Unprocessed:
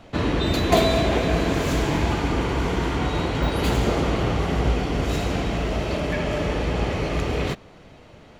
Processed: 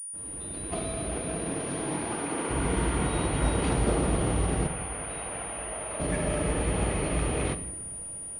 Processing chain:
fade in at the beginning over 2.75 s
0:01.16–0:02.49: high-pass filter 100 Hz → 290 Hz 12 dB per octave
in parallel at −4.5 dB: sample-and-hold swept by an LFO 13×, swing 160% 0.25 Hz
0:04.67–0:06.00: on the sum: three-way crossover with the lows and the highs turned down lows −17 dB, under 570 Hz, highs −18 dB, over 3,200 Hz
on a send at −10 dB: convolution reverb RT60 0.95 s, pre-delay 6 ms
on the sum: switching amplifier with a slow clock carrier 9,500 Hz
level −8.5 dB

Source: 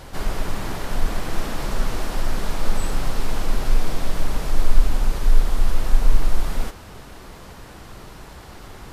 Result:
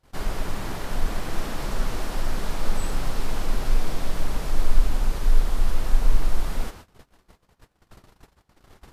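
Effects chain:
noise gate −36 dBFS, range −29 dB
level −3 dB

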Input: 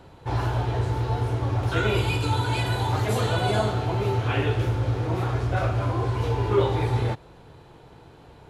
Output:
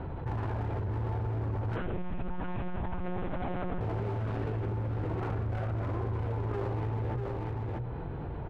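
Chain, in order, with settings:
stylus tracing distortion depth 0.37 ms
Chebyshev low-pass filter 2,000 Hz, order 2
spectral tilt −2.5 dB per octave
mains-hum notches 60/120/180/240/300/360/420/480/540/600 Hz
brickwall limiter −17.5 dBFS, peak gain reduction 11.5 dB
asymmetric clip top −24 dBFS, bottom −19.5 dBFS
single-tap delay 641 ms −7.5 dB
0:01.76–0:03.81: one-pitch LPC vocoder at 8 kHz 180 Hz
envelope flattener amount 70%
level −9 dB

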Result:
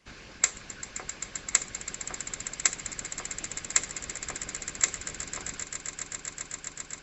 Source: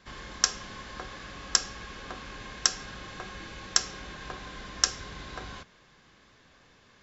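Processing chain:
formants moved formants +5 semitones
echo that builds up and dies away 131 ms, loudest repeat 8, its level −13 dB
harmonic and percussive parts rebalanced harmonic −12 dB

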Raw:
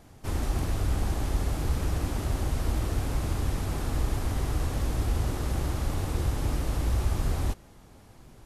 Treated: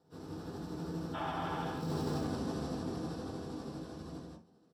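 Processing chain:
source passing by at 0:03.47, 30 m/s, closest 4.3 metres
high-pass filter 190 Hz 12 dB per octave
high-shelf EQ 6,800 Hz −4 dB
in parallel at −6.5 dB: bit reduction 6 bits
on the sum: loudspeakers that aren't time-aligned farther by 83 metres −5 dB, 97 metres −4 dB
time stretch by overlap-add 0.56×, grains 160 ms
healed spectral selection 0:01.17–0:01.82, 540–3,700 Hz after
convolution reverb RT60 0.20 s, pre-delay 3 ms, DRR −2 dB
reversed playback
downward compressor 8 to 1, threshold −39 dBFS, peak gain reduction 19.5 dB
reversed playback
level +5.5 dB

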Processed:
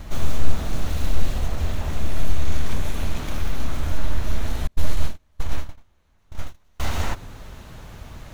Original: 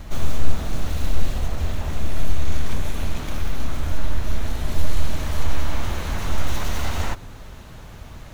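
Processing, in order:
0:04.67–0:06.80: noise gate −11 dBFS, range −38 dB

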